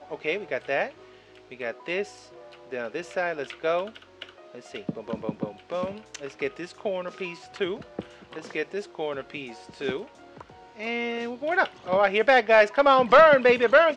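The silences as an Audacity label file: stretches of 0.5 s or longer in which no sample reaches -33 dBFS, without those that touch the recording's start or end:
0.890000	1.520000	silence
2.040000	2.720000	silence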